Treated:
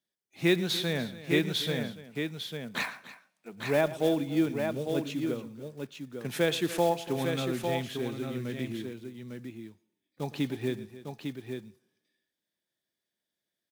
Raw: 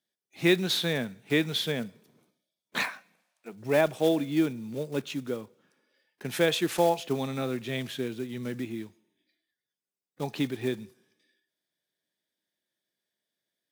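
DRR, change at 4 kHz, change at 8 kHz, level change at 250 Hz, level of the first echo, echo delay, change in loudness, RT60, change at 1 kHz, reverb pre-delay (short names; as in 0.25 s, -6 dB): none, -2.0 dB, -2.0 dB, -0.5 dB, -17.0 dB, 0.112 s, -2.0 dB, none, -1.5 dB, none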